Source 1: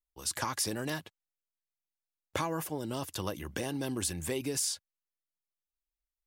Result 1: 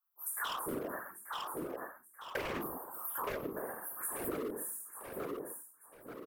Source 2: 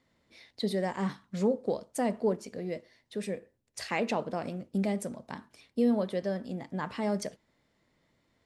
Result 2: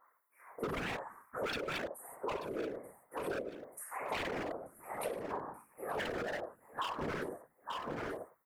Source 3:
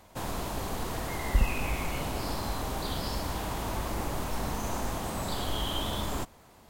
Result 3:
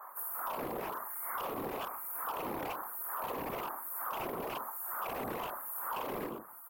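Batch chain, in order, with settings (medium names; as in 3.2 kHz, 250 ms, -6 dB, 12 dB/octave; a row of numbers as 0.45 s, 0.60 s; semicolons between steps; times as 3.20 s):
LFO high-pass sine 1.1 Hz 320–4000 Hz; Chebyshev band-stop 1.2–9.7 kHz, order 3; high-order bell 6.3 kHz -13 dB; hum notches 60/120/180/240/300 Hz; gated-style reverb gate 200 ms falling, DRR -6.5 dB; wavefolder -23.5 dBFS; feedback delay 884 ms, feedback 30%, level -17 dB; whisper effect; dynamic bell 790 Hz, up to -5 dB, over -46 dBFS, Q 0.81; compression 8:1, threshold -45 dBFS; trim +9 dB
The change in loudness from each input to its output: -5.5 LU, -7.5 LU, -5.0 LU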